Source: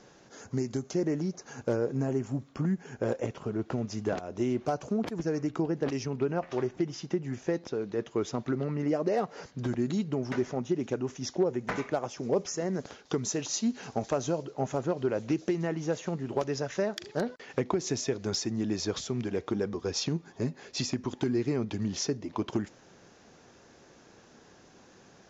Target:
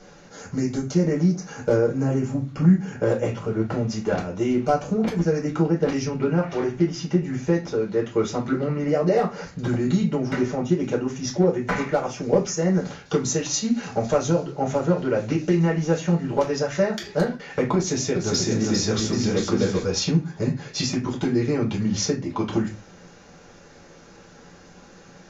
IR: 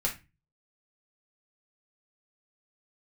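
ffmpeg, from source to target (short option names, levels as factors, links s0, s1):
-filter_complex "[0:a]asettb=1/sr,asplit=3[s0][s1][s2];[s0]atrim=end=17.754[s3];[s1]atrim=start=17.75:end=19.83,asetpts=PTS-STARTPTS,afade=t=in:d=0.004:c=qsin,afade=t=out:st=2.076:d=0.004:c=qsin,aecho=1:1:400|640|784|870.4|922.2:0.631|0.398|0.251|0.158|0.1,atrim=end_sample=91728[s4];[s2]atrim=start=19.826[s5];[s3][s4]acrossfade=d=0.004:c1=hsin:c2=qsin[s6];[s6][s5]acrossfade=d=0.004:c1=qsin:c2=hsin[s7];[1:a]atrim=start_sample=2205[s8];[s7][s8]afir=irnorm=-1:irlink=0,volume=1.33"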